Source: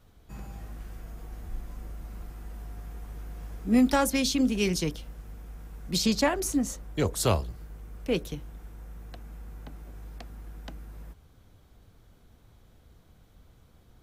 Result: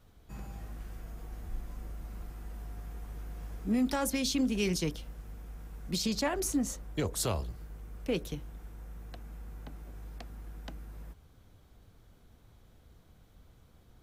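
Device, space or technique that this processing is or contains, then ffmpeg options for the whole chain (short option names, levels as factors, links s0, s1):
limiter into clipper: -af "alimiter=limit=0.106:level=0:latency=1:release=96,asoftclip=type=hard:threshold=0.0944,volume=0.794"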